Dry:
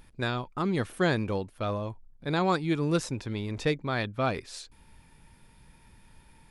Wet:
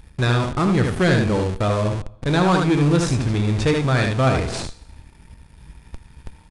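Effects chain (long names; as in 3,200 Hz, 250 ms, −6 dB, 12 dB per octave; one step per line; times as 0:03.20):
parametric band 63 Hz +13 dB 1.5 octaves
leveller curve on the samples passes 2
on a send: ambience of single reflections 24 ms −13 dB, 76 ms −4.5 dB
on the sum: coupled-rooms reverb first 0.8 s, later 2.3 s, from −24 dB, DRR 11.5 dB
in parallel at −6.5 dB: comparator with hysteresis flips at −30 dBFS
on the sum: downsampling to 22,050 Hz
level −1 dB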